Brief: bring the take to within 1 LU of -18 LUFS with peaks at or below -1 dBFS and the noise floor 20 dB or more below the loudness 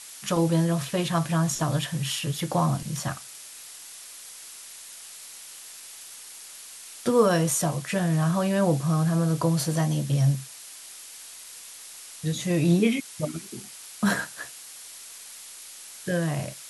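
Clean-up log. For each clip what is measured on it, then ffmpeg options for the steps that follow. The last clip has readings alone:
noise floor -44 dBFS; noise floor target -46 dBFS; loudness -25.5 LUFS; peak level -9.5 dBFS; loudness target -18.0 LUFS
-> -af "afftdn=nr=6:nf=-44"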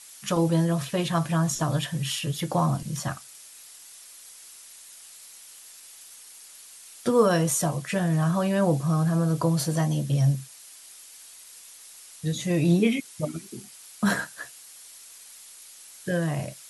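noise floor -48 dBFS; loudness -25.5 LUFS; peak level -10.0 dBFS; loudness target -18.0 LUFS
-> -af "volume=2.37"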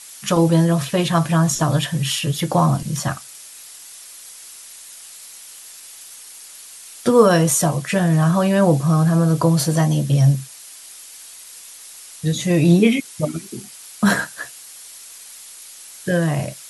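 loudness -18.0 LUFS; peak level -2.5 dBFS; noise floor -40 dBFS

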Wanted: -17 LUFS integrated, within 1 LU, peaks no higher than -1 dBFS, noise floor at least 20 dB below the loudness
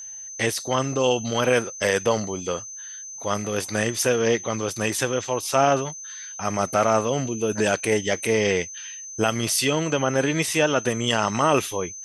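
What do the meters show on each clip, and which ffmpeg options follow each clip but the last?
steady tone 6.2 kHz; tone level -35 dBFS; loudness -23.0 LUFS; peak level -5.5 dBFS; loudness target -17.0 LUFS
-> -af "bandreject=f=6200:w=30"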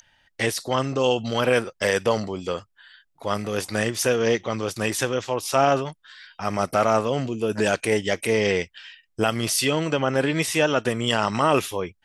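steady tone not found; loudness -23.5 LUFS; peak level -5.5 dBFS; loudness target -17.0 LUFS
-> -af "volume=2.11,alimiter=limit=0.891:level=0:latency=1"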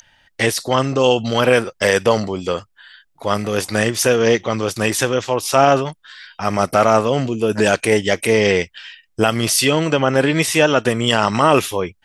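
loudness -17.0 LUFS; peak level -1.0 dBFS; noise floor -63 dBFS

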